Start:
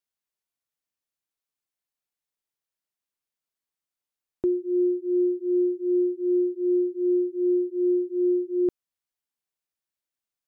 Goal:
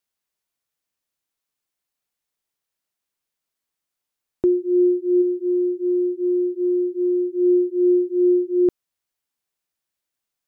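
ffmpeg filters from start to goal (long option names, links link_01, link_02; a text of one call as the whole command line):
ffmpeg -i in.wav -filter_complex "[0:a]asplit=3[link_01][link_02][link_03];[link_01]afade=type=out:start_time=5.21:duration=0.02[link_04];[link_02]acompressor=threshold=-24dB:ratio=6,afade=type=in:start_time=5.21:duration=0.02,afade=type=out:start_time=7.36:duration=0.02[link_05];[link_03]afade=type=in:start_time=7.36:duration=0.02[link_06];[link_04][link_05][link_06]amix=inputs=3:normalize=0,volume=6dB" out.wav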